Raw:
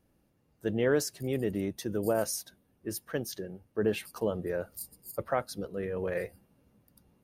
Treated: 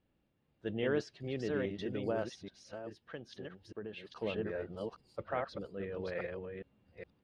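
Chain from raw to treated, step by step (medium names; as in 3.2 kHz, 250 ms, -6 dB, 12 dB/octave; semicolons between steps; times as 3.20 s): chunks repeated in reverse 414 ms, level -3 dB; 2.33–4.20 s: compression 6:1, threshold -34 dBFS, peak gain reduction 11 dB; four-pole ladder low-pass 4.1 kHz, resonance 40%; trim +1 dB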